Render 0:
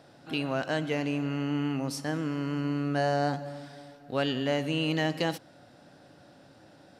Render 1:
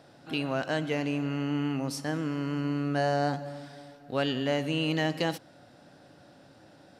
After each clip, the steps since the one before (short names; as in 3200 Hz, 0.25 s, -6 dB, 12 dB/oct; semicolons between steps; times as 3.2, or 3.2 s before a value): nothing audible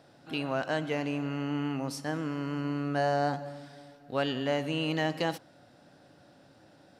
dynamic EQ 940 Hz, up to +4 dB, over -39 dBFS, Q 0.78; gain -3 dB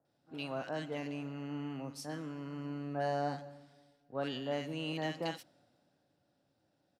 bands offset in time lows, highs 50 ms, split 1500 Hz; three-band expander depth 40%; gain -7.5 dB